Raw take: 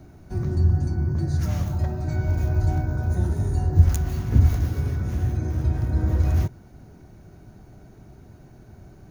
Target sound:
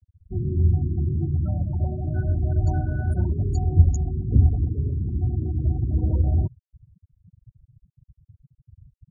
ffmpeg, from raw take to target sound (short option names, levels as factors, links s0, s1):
-filter_complex "[0:a]asettb=1/sr,asplit=3[s0][s1][s2];[s0]atrim=end=2.654[s3];[s1]atrim=start=2.65:end=3.71,asetpts=PTS-STARTPTS,afade=t=in:d=0.004:c=qsin,afade=t=out:st=1.056:d=0.004:c=qsin,highshelf=f=2500:g=11.5[s4];[s2]atrim=start=3.706[s5];[s3][s4]acrossfade=d=0.004:c1=hsin:c2=qsin[s6];[s6][s5]acrossfade=d=0.004:c1=qsin:c2=hsin,afftfilt=real='re*gte(hypot(re,im),0.0501)':imag='im*gte(hypot(re,im),0.0501)':win_size=1024:overlap=0.75"